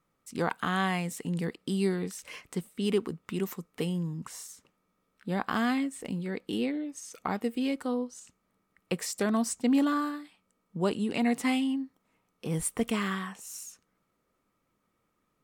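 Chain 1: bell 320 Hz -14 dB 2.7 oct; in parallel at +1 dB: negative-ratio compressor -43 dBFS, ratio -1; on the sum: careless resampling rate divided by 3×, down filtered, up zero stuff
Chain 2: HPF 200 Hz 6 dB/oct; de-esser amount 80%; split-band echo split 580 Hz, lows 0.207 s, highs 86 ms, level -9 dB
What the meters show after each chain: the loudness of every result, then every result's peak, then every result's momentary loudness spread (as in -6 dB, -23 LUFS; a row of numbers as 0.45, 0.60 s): -29.0, -32.5 LUFS; -6.0, -14.0 dBFS; 9, 14 LU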